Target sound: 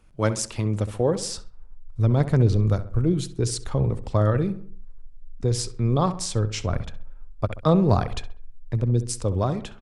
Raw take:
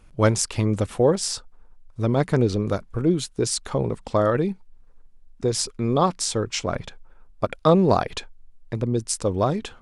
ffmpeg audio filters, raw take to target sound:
ffmpeg -i in.wav -filter_complex "[0:a]asplit=2[link_01][link_02];[link_02]adelay=66,lowpass=frequency=2200:poles=1,volume=-12.5dB,asplit=2[link_03][link_04];[link_04]adelay=66,lowpass=frequency=2200:poles=1,volume=0.48,asplit=2[link_05][link_06];[link_06]adelay=66,lowpass=frequency=2200:poles=1,volume=0.48,asplit=2[link_07][link_08];[link_08]adelay=66,lowpass=frequency=2200:poles=1,volume=0.48,asplit=2[link_09][link_10];[link_10]adelay=66,lowpass=frequency=2200:poles=1,volume=0.48[link_11];[link_01][link_03][link_05][link_07][link_09][link_11]amix=inputs=6:normalize=0,acrossover=split=120[link_12][link_13];[link_12]dynaudnorm=framelen=510:gausssize=5:maxgain=14.5dB[link_14];[link_14][link_13]amix=inputs=2:normalize=0,volume=-4.5dB" out.wav

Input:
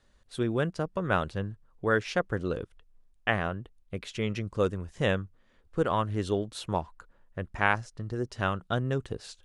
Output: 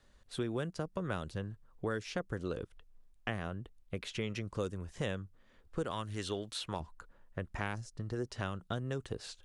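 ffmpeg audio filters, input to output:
ffmpeg -i in.wav -filter_complex "[0:a]asettb=1/sr,asplit=3[link_01][link_02][link_03];[link_01]atrim=end=5.914[link_04];[link_02]atrim=start=5.91:end=6.8,asetpts=PTS-STARTPTS,afade=type=in:duration=0.004:curve=qsin,afade=type=out:start_time=0.886:duration=0.004:curve=qsin,tiltshelf=frequency=920:gain=-7.5[link_05];[link_03]atrim=start=6.796[link_06];[link_04][link_05]acrossfade=duration=0.004:curve1=hsin:curve2=qsin[link_07];[link_07][link_06]acrossfade=duration=0.004:curve1=qsin:curve2=hsin,acrossover=split=410|4400[link_08][link_09][link_10];[link_08]acompressor=threshold=-37dB:ratio=4[link_11];[link_09]acompressor=threshold=-40dB:ratio=4[link_12];[link_10]acompressor=threshold=-49dB:ratio=4[link_13];[link_11][link_12][link_13]amix=inputs=3:normalize=0" out.wav

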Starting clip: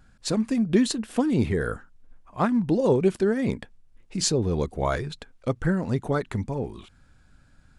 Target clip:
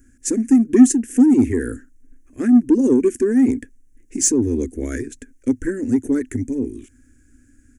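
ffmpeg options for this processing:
ffmpeg -i in.wav -filter_complex "[0:a]firequalizer=gain_entry='entry(110,0);entry(160,-27);entry(250,14);entry(690,-21);entry(990,-28);entry(1700,1);entry(4000,-19);entry(6200,9)':delay=0.05:min_phase=1,asplit=2[link_01][link_02];[link_02]asoftclip=type=tanh:threshold=-14.5dB,volume=-5.5dB[link_03];[link_01][link_03]amix=inputs=2:normalize=0,volume=-1dB" out.wav

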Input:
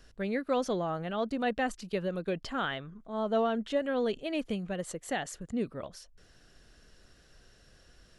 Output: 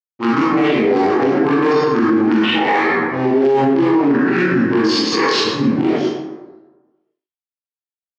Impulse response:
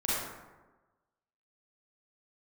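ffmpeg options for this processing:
-filter_complex "[0:a]aemphasis=mode=production:type=bsi,afwtdn=0.00794,areverse,acompressor=threshold=-42dB:ratio=6,areverse,asetrate=26222,aresample=44100,atempo=1.68179,asplit=2[link_01][link_02];[link_02]acrusher=bits=3:dc=4:mix=0:aa=0.000001,volume=-9dB[link_03];[link_01][link_03]amix=inputs=2:normalize=0,aeval=exprs='sgn(val(0))*max(abs(val(0))-0.001,0)':channel_layout=same,highpass=320,equalizer=frequency=650:width_type=q:width=4:gain=-10,equalizer=frequency=990:width_type=q:width=4:gain=-6,equalizer=frequency=1500:width_type=q:width=4:gain=-5,equalizer=frequency=3700:width_type=q:width=4:gain=-6,lowpass=frequency=4600:width=0.5412,lowpass=frequency=4600:width=1.3066,asplit=2[link_04][link_05];[link_05]adelay=22,volume=-2dB[link_06];[link_04][link_06]amix=inputs=2:normalize=0[link_07];[1:a]atrim=start_sample=2205[link_08];[link_07][link_08]afir=irnorm=-1:irlink=0,alimiter=level_in=35.5dB:limit=-1dB:release=50:level=0:latency=1,volume=-6dB"

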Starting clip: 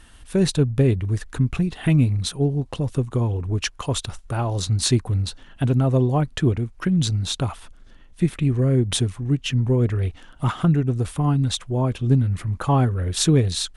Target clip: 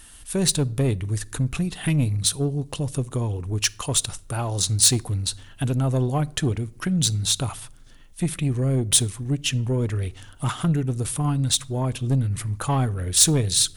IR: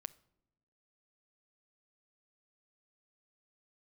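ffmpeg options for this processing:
-filter_complex "[0:a]asoftclip=type=tanh:threshold=-12dB,aemphasis=mode=production:type=75fm,asplit=2[link_01][link_02];[1:a]atrim=start_sample=2205[link_03];[link_02][link_03]afir=irnorm=-1:irlink=0,volume=9dB[link_04];[link_01][link_04]amix=inputs=2:normalize=0,volume=-10.5dB"

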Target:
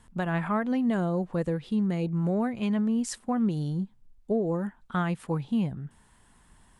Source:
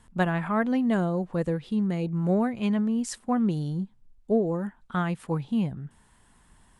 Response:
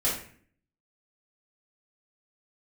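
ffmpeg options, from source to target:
-af "alimiter=limit=-19dB:level=0:latency=1:release=131"

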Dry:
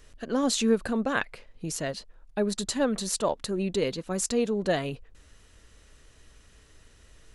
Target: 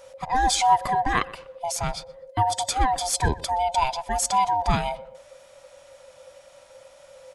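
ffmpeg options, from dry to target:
ffmpeg -i in.wav -filter_complex "[0:a]afftfilt=real='real(if(lt(b,1008),b+24*(1-2*mod(floor(b/24),2)),b),0)':imag='imag(if(lt(b,1008),b+24*(1-2*mod(floor(b/24),2)),b),0)':win_size=2048:overlap=0.75,asplit=2[link_01][link_02];[link_02]adelay=123,lowpass=frequency=2400:poles=1,volume=-20dB,asplit=2[link_03][link_04];[link_04]adelay=123,lowpass=frequency=2400:poles=1,volume=0.37,asplit=2[link_05][link_06];[link_06]adelay=123,lowpass=frequency=2400:poles=1,volume=0.37[link_07];[link_01][link_03][link_05][link_07]amix=inputs=4:normalize=0,volume=4.5dB" out.wav

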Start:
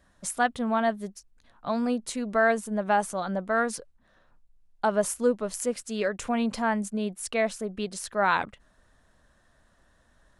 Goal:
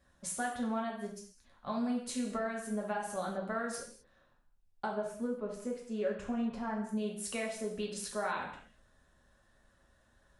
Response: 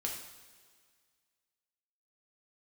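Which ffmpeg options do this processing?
-filter_complex "[0:a]asettb=1/sr,asplit=3[link_01][link_02][link_03];[link_01]atrim=end=4.874[link_04];[link_02]atrim=start=4.87:end=6.89,asetpts=PTS-STARTPTS,afade=type=in:duration=0.004:curve=qsin,afade=type=out:start_time=2.016:duration=0.004:curve=qsin,lowpass=frequency=1100:poles=1[link_05];[link_03]atrim=start=6.886[link_06];[link_04][link_05]acrossfade=duration=0.004:curve1=hsin:curve2=qsin[link_07];[link_07][link_06]acrossfade=duration=0.004:curve1=qsin:curve2=hsin,acompressor=threshold=-27dB:ratio=6[link_08];[1:a]atrim=start_sample=2205,afade=type=out:start_time=0.36:duration=0.01,atrim=end_sample=16317,asetrate=52920,aresample=44100[link_09];[link_08][link_09]afir=irnorm=-1:irlink=0,volume=-4dB"

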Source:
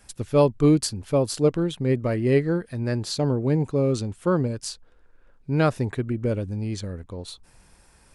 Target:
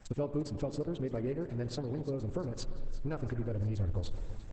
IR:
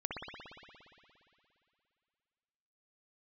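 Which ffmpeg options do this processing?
-filter_complex "[0:a]aexciter=amount=1.6:drive=6.6:freq=6900,acrossover=split=6700[link_01][link_02];[link_02]acompressor=threshold=-49dB:ratio=4:attack=1:release=60[link_03];[link_01][link_03]amix=inputs=2:normalize=0,highshelf=frequency=2200:gain=-10.5,acompressor=threshold=-33dB:ratio=6,atempo=1.8,asubboost=boost=10.5:cutoff=54,aecho=1:1:345|690|1035|1380|1725|2070:0.15|0.0898|0.0539|0.0323|0.0194|0.0116,asplit=2[link_04][link_05];[1:a]atrim=start_sample=2205,afade=type=out:start_time=0.37:duration=0.01,atrim=end_sample=16758[link_06];[link_05][link_06]afir=irnorm=-1:irlink=0,volume=-10dB[link_07];[link_04][link_07]amix=inputs=2:normalize=0" -ar 48000 -c:a libopus -b:a 10k

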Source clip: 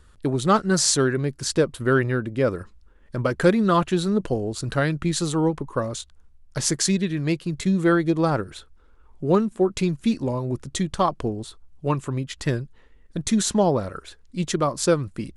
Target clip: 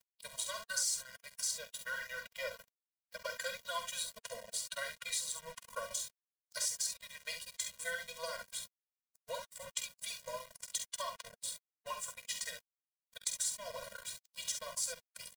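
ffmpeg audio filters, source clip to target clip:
ffmpeg -i in.wav -filter_complex "[0:a]aeval=exprs='if(lt(val(0),0),0.708*val(0),val(0))':channel_layout=same,agate=range=-33dB:threshold=-48dB:ratio=3:detection=peak,aderivative,acompressor=threshold=-45dB:ratio=4,aecho=1:1:47|67:0.376|0.398,flanger=delay=3.3:depth=4.2:regen=-56:speed=0.85:shape=sinusoidal,acompressor=mode=upward:threshold=-58dB:ratio=2.5,highpass=frequency=500:width=0.5412,highpass=frequency=500:width=1.3066,aeval=exprs='val(0)*gte(abs(val(0)),0.00158)':channel_layout=same,asettb=1/sr,asplit=3[link_01][link_02][link_03];[link_01]atrim=end=1.584[link_04];[link_02]atrim=start=1.58:end=3.68,asetpts=PTS-STARTPTS,afade=type=in:duration=0.004:curve=qsin,afade=type=out:start_time=2.096:duration=0.004:curve=qsin,equalizer=frequency=9000:width=5.7:gain=-13.5[link_05];[link_03]atrim=start=3.676[link_06];[link_04][link_05]acrossfade=duration=0.004:curve1=hsin:curve2=qsin[link_07];[link_07][link_06]acrossfade=duration=0.004:curve1=qsin:curve2=hsin,afftfilt=real='re*eq(mod(floor(b*sr/1024/230),2),0)':imag='im*eq(mod(floor(b*sr/1024/230),2),0)':win_size=1024:overlap=0.75,volume=15dB" out.wav

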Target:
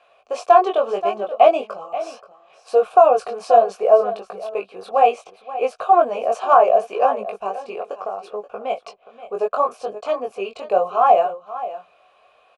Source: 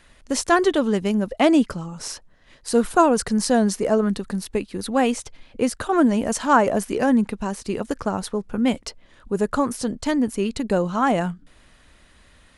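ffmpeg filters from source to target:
ffmpeg -i in.wav -filter_complex "[0:a]asplit=3[link_01][link_02][link_03];[link_01]bandpass=frequency=730:width_type=q:width=8,volume=0dB[link_04];[link_02]bandpass=frequency=1090:width_type=q:width=8,volume=-6dB[link_05];[link_03]bandpass=frequency=2440:width_type=q:width=8,volume=-9dB[link_06];[link_04][link_05][link_06]amix=inputs=3:normalize=0,asplit=3[link_07][link_08][link_09];[link_07]afade=type=out:start_time=7.49:duration=0.02[link_10];[link_08]acompressor=threshold=-39dB:ratio=6,afade=type=in:start_time=7.49:duration=0.02,afade=type=out:start_time=8.69:duration=0.02[link_11];[link_09]afade=type=in:start_time=8.69:duration=0.02[link_12];[link_10][link_11][link_12]amix=inputs=3:normalize=0,lowshelf=frequency=350:width_type=q:width=3:gain=-6.5,aecho=1:1:529:0.188,flanger=delay=19:depth=2.7:speed=0.7,alimiter=level_in=16.5dB:limit=-1dB:release=50:level=0:latency=1,volume=-1dB" out.wav

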